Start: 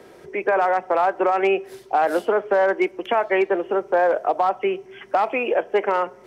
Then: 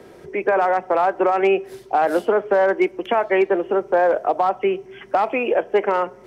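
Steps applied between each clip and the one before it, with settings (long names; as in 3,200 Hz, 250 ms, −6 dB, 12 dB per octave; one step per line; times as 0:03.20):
low-shelf EQ 310 Hz +6.5 dB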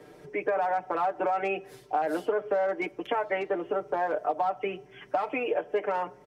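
comb filter 6.7 ms, depth 85%
downward compressor 3 to 1, threshold −16 dBFS, peak gain reduction 5.5 dB
level −8.5 dB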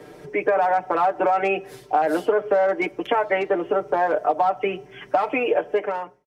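fade-out on the ending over 0.60 s
level +7.5 dB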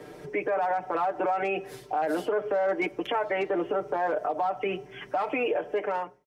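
brickwall limiter −18 dBFS, peak gain reduction 10 dB
level −1.5 dB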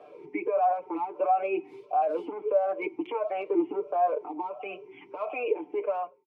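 formant filter swept between two vowels a-u 1.5 Hz
level +6.5 dB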